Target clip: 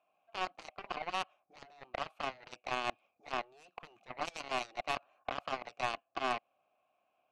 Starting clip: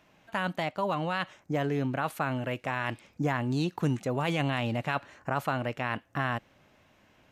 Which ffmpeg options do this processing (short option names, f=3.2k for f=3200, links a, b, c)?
-filter_complex "[0:a]afftfilt=real='re*lt(hypot(re,im),0.158)':imag='im*lt(hypot(re,im),0.158)':win_size=1024:overlap=0.75,asplit=3[a][b][c];[a]bandpass=f=730:t=q:w=8,volume=0dB[d];[b]bandpass=f=1.09k:t=q:w=8,volume=-6dB[e];[c]bandpass=f=2.44k:t=q:w=8,volume=-9dB[f];[d][e][f]amix=inputs=3:normalize=0,aeval=exprs='0.0376*(cos(1*acos(clip(val(0)/0.0376,-1,1)))-cos(1*PI/2))+0.0075*(cos(2*acos(clip(val(0)/0.0376,-1,1)))-cos(2*PI/2))+0.00531*(cos(3*acos(clip(val(0)/0.0376,-1,1)))-cos(3*PI/2))+0.00422*(cos(7*acos(clip(val(0)/0.0376,-1,1)))-cos(7*PI/2))+0.000422*(cos(8*acos(clip(val(0)/0.0376,-1,1)))-cos(8*PI/2))':c=same,volume=9.5dB"